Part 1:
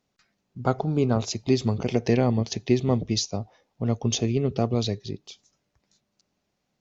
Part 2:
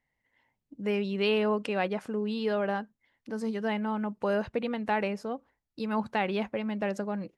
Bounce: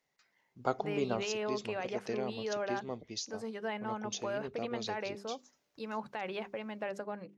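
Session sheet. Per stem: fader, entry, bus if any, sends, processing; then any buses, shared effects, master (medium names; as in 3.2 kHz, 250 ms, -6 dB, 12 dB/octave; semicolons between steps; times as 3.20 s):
1.10 s -6 dB -> 1.40 s -13 dB -> 4.70 s -13 dB -> 5.42 s -1.5 dB, 0.00 s, no send, treble shelf 6.4 kHz +10 dB
-4.0 dB, 0.00 s, no send, hum notches 50/100/150/200/250/300/350/400 Hz; peak limiter -23 dBFS, peak gain reduction 8.5 dB; peaking EQ 150 Hz +14 dB 0.35 oct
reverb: none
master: tone controls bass -14 dB, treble -4 dB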